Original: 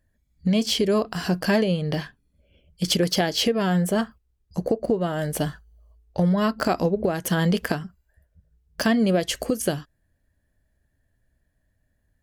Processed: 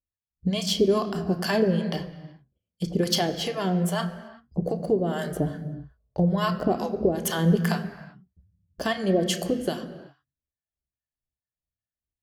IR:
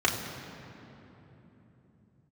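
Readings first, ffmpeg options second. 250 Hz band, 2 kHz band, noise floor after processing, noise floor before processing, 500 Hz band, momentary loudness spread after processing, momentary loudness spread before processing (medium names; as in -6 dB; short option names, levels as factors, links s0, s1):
-2.5 dB, -4.0 dB, under -85 dBFS, -71 dBFS, -1.0 dB, 13 LU, 10 LU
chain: -filter_complex "[0:a]acrossover=split=660[s0][s1];[s0]aeval=exprs='val(0)*(1-1/2+1/2*cos(2*PI*2.4*n/s))':c=same[s2];[s1]aeval=exprs='val(0)*(1-1/2-1/2*cos(2*PI*2.4*n/s))':c=same[s3];[s2][s3]amix=inputs=2:normalize=0,agate=range=0.0562:threshold=0.00158:ratio=16:detection=peak,asplit=2[s4][s5];[1:a]atrim=start_sample=2205,afade=t=out:st=0.44:d=0.01,atrim=end_sample=19845[s6];[s5][s6]afir=irnorm=-1:irlink=0,volume=0.158[s7];[s4][s7]amix=inputs=2:normalize=0"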